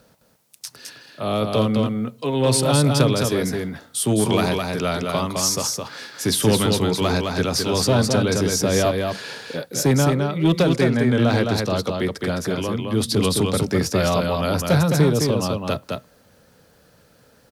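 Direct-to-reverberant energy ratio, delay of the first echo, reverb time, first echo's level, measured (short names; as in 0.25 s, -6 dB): none, 0.212 s, none, -4.0 dB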